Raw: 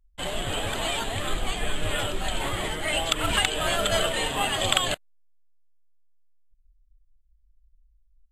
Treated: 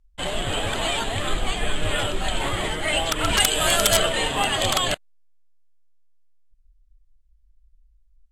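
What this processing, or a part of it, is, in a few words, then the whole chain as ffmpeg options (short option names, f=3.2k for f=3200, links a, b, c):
overflowing digital effects unit: -filter_complex "[0:a]aeval=exprs='(mod(4.47*val(0)+1,2)-1)/4.47':c=same,lowpass=10k,asettb=1/sr,asplit=3[a][b][c];[a]atrim=end=3.404[d];[b]atrim=start=3.4:end=3.97,asetpts=PTS-STARTPTS,afade=t=in:d=0.004:c=qsin,afade=t=out:st=0.566:d=0.004:c=qsin,aemphasis=mode=production:type=50kf[e];[c]atrim=start=3.966[f];[d][e]acrossfade=d=0.004:c1=hsin:c2=qsin[g];[g][f]acrossfade=d=0.004:c1=qsin:c2=hsin,volume=3.5dB"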